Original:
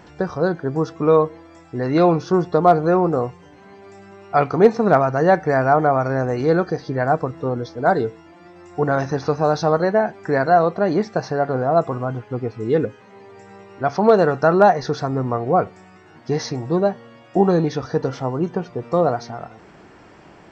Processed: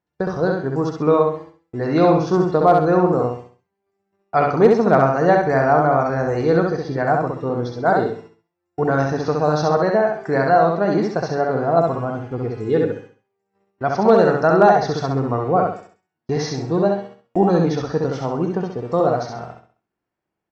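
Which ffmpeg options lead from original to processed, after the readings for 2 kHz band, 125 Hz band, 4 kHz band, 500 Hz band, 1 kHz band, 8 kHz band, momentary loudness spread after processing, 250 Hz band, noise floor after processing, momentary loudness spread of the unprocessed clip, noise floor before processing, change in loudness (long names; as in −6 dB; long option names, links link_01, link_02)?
+1.0 dB, +1.0 dB, +1.0 dB, +1.0 dB, +1.0 dB, can't be measured, 12 LU, +1.0 dB, −81 dBFS, 11 LU, −47 dBFS, +1.0 dB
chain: -filter_complex "[0:a]agate=range=-37dB:threshold=-37dB:ratio=16:detection=peak,asplit=2[link_01][link_02];[link_02]aecho=0:1:66|132|198|264|330:0.708|0.248|0.0867|0.0304|0.0106[link_03];[link_01][link_03]amix=inputs=2:normalize=0,volume=-1dB"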